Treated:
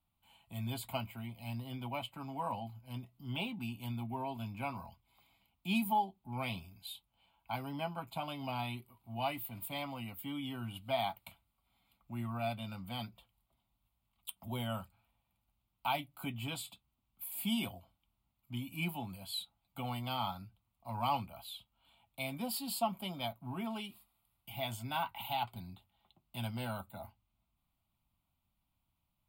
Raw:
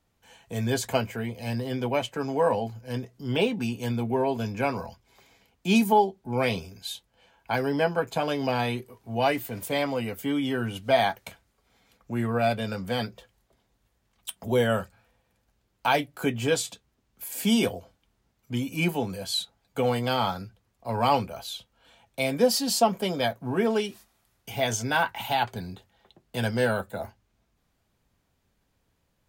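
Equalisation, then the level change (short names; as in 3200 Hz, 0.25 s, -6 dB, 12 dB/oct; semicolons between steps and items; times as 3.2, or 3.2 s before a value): high shelf 12000 Hz +9 dB; fixed phaser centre 1700 Hz, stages 6; -9.0 dB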